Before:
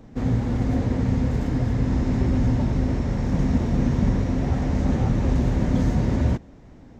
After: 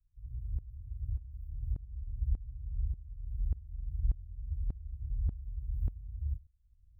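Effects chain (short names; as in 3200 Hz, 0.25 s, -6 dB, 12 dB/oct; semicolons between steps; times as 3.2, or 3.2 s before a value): inverse Chebyshev band-stop 400–3600 Hz, stop band 80 dB; dB-ramp tremolo swelling 1.7 Hz, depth 19 dB; gain -3 dB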